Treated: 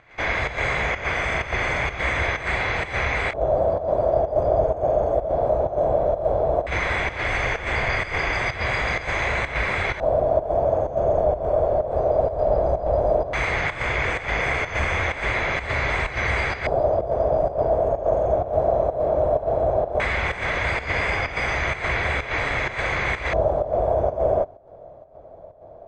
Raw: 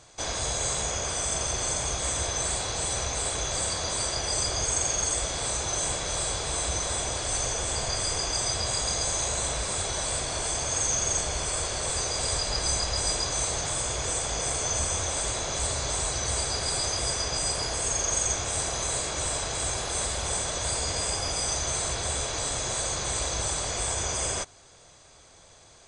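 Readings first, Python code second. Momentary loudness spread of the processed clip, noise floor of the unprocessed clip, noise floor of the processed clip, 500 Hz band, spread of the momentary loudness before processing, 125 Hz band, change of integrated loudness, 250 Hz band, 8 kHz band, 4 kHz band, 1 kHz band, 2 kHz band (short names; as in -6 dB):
3 LU, -54 dBFS, -43 dBFS, +14.5 dB, 3 LU, +5.5 dB, +4.5 dB, +7.0 dB, under -20 dB, -6.5 dB, +8.5 dB, +13.0 dB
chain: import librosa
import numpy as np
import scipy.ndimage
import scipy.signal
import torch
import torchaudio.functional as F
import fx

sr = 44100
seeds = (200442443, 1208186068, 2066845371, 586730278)

y = fx.high_shelf(x, sr, hz=6200.0, db=-8.5)
y = fx.filter_lfo_lowpass(y, sr, shape='square', hz=0.15, low_hz=630.0, high_hz=2100.0, q=5.9)
y = fx.volume_shaper(y, sr, bpm=127, per_beat=1, depth_db=-11, release_ms=104.0, shape='slow start')
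y = F.gain(torch.from_numpy(y), 6.5).numpy()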